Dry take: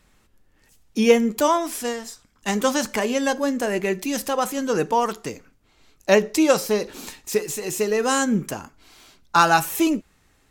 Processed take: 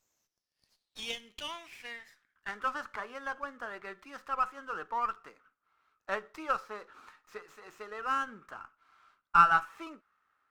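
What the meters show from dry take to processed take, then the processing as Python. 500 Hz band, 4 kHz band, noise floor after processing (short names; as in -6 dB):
-23.5 dB, -14.0 dB, under -85 dBFS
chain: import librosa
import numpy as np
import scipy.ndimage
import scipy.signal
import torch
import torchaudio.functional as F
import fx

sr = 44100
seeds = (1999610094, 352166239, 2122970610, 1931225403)

y = fx.filter_sweep_bandpass(x, sr, from_hz=6700.0, to_hz=1300.0, start_s=0.07, end_s=2.73, q=6.0)
y = fx.running_max(y, sr, window=3)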